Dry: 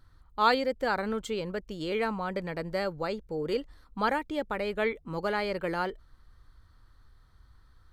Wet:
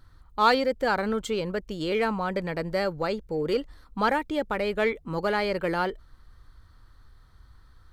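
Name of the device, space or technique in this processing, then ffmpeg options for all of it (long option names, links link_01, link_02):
parallel distortion: -filter_complex "[0:a]asplit=2[link_01][link_02];[link_02]asoftclip=type=hard:threshold=-27dB,volume=-9.5dB[link_03];[link_01][link_03]amix=inputs=2:normalize=0,volume=2dB"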